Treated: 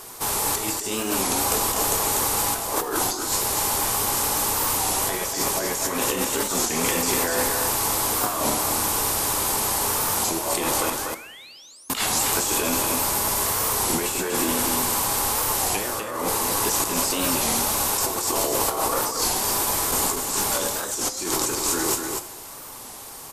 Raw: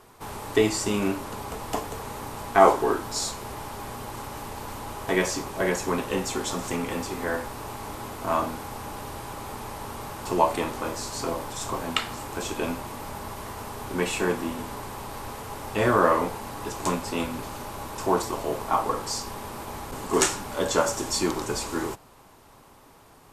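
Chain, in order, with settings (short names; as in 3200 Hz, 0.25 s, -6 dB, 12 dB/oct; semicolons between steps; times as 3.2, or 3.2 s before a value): high shelf 3900 Hz +8 dB; painted sound rise, 10.91–11.9, 1300–9900 Hz -9 dBFS; tone controls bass -5 dB, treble +7 dB; negative-ratio compressor -30 dBFS, ratio -1; echo 0.244 s -5 dB; on a send at -11 dB: reverb, pre-delay 3 ms; on the sum: record warp 33 1/3 rpm, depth 160 cents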